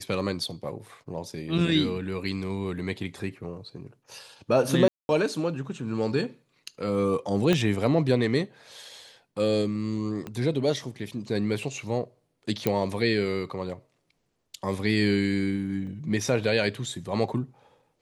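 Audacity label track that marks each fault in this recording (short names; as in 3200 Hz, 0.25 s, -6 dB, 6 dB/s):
4.880000	5.090000	gap 0.211 s
7.530000	7.530000	pop -10 dBFS
10.270000	10.270000	pop -22 dBFS
12.670000	12.670000	pop -10 dBFS
15.870000	15.870000	gap 2.9 ms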